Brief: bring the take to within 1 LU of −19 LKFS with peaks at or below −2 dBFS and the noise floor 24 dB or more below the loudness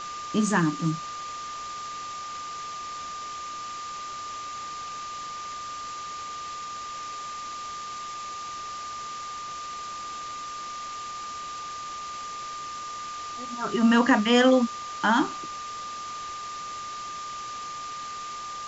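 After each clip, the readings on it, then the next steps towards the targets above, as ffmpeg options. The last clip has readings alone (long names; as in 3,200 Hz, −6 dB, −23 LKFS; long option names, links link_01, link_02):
interfering tone 1,200 Hz; level of the tone −34 dBFS; background noise floor −36 dBFS; target noise floor −54 dBFS; integrated loudness −30.0 LKFS; sample peak −8.0 dBFS; target loudness −19.0 LKFS
→ -af "bandreject=frequency=1200:width=30"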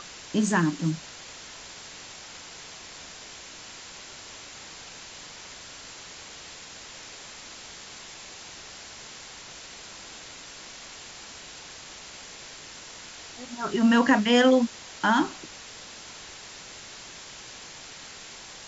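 interfering tone none found; background noise floor −44 dBFS; target noise floor −48 dBFS
→ -af "afftdn=noise_reduction=6:noise_floor=-44"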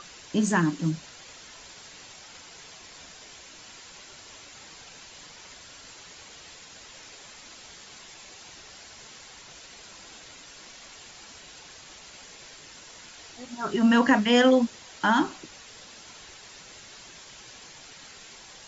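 background noise floor −48 dBFS; integrated loudness −23.5 LKFS; sample peak −8.5 dBFS; target loudness −19.0 LKFS
→ -af "volume=4.5dB"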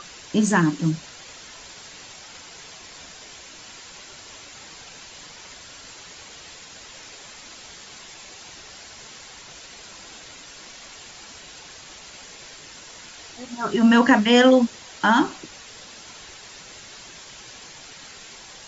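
integrated loudness −19.0 LKFS; sample peak −4.0 dBFS; background noise floor −43 dBFS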